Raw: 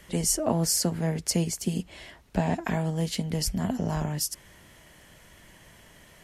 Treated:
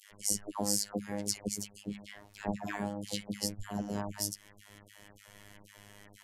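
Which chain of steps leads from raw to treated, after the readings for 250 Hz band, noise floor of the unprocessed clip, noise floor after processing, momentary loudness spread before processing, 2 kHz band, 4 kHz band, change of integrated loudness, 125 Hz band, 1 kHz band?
-8.5 dB, -54 dBFS, -60 dBFS, 9 LU, -6.5 dB, -6.0 dB, -8.0 dB, -15.0 dB, -7.0 dB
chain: in parallel at 0 dB: compressor, threshold -38 dBFS, peak gain reduction 17.5 dB; on the sum: step gate "x.xx.xxxx.xxxx.x" 154 bpm -60 dB; notches 60/120/180 Hz; dispersion lows, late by 0.119 s, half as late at 1200 Hz; robotiser 102 Hz; gain -5.5 dB

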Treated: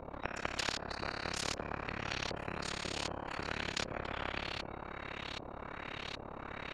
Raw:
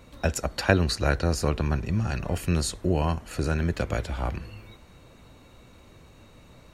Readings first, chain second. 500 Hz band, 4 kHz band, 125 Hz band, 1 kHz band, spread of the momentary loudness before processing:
-13.0 dB, -3.5 dB, -20.0 dB, -6.5 dB, 9 LU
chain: flipped gate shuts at -11 dBFS, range -29 dB; compressor, threshold -26 dBFS, peak gain reduction 8 dB; resonator 58 Hz, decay 1.6 s, harmonics all, mix 80%; AM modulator 35 Hz, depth 95%; LFO low-pass saw up 1.3 Hz 520–4400 Hz; spectral compressor 4:1; gain +8.5 dB

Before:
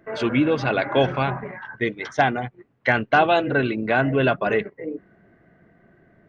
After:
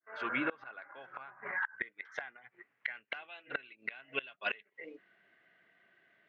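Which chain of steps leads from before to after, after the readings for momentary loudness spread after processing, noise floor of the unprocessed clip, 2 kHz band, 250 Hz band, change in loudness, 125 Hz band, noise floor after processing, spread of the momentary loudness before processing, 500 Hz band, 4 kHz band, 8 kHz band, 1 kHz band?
15 LU, -61 dBFS, -13.5 dB, -23.0 dB, -18.0 dB, -34.5 dB, -78 dBFS, 14 LU, -25.0 dB, -16.0 dB, n/a, -21.5 dB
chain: opening faded in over 0.61 s; band-pass sweep 1400 Hz -> 3100 Hz, 1.19–4.47; flipped gate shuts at -27 dBFS, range -26 dB; gain +6 dB

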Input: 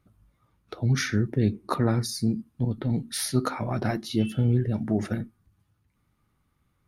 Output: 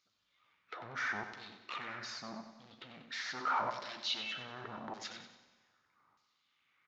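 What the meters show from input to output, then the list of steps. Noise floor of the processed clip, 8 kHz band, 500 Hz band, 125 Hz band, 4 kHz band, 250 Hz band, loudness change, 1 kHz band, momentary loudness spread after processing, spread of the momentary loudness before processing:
-79 dBFS, -17.0 dB, -16.5 dB, -33.0 dB, -4.0 dB, -25.5 dB, -13.0 dB, -3.0 dB, 17 LU, 6 LU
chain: half-wave gain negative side -3 dB; low shelf 65 Hz -10.5 dB; in parallel at +1 dB: negative-ratio compressor -36 dBFS, ratio -1; on the sum: hard clip -25.5 dBFS, distortion -7 dB; LFO band-pass saw down 0.81 Hz 920–5200 Hz; transient shaper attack -3 dB, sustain +2 dB; feedback echo 95 ms, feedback 45%, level -9.5 dB; Schroeder reverb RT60 1.7 s, combs from 31 ms, DRR 14.5 dB; downsampling 16000 Hz; gain +1.5 dB

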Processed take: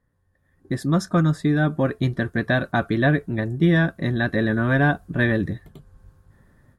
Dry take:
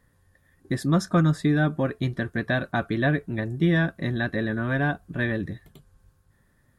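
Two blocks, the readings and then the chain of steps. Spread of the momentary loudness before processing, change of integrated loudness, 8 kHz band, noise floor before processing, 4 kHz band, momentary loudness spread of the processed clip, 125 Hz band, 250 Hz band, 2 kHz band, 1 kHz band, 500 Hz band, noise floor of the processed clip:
8 LU, +3.5 dB, n/a, -64 dBFS, +2.5 dB, 6 LU, +3.5 dB, +3.5 dB, +4.0 dB, +3.5 dB, +4.0 dB, -66 dBFS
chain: bell 2600 Hz -2.5 dB; AGC gain up to 16 dB; mismatched tape noise reduction decoder only; gain -6.5 dB

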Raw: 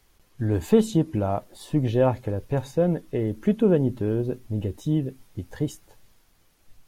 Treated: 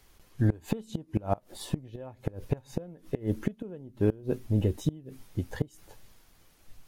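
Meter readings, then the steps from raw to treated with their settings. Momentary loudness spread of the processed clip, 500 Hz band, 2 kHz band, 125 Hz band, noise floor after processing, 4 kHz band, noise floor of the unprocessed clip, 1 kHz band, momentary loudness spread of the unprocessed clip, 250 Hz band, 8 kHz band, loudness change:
11 LU, -10.5 dB, -5.0 dB, -5.0 dB, -61 dBFS, -5.0 dB, -62 dBFS, -7.5 dB, 11 LU, -8.5 dB, n/a, -7.5 dB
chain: flipped gate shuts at -16 dBFS, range -25 dB; gain +2 dB

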